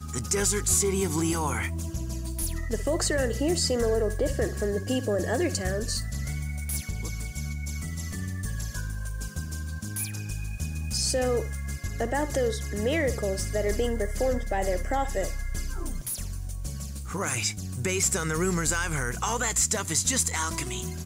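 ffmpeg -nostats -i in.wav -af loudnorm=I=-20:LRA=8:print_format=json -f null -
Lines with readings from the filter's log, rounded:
"input_i" : "-27.9",
"input_tp" : "-11.1",
"input_lra" : "7.1",
"input_thresh" : "-37.9",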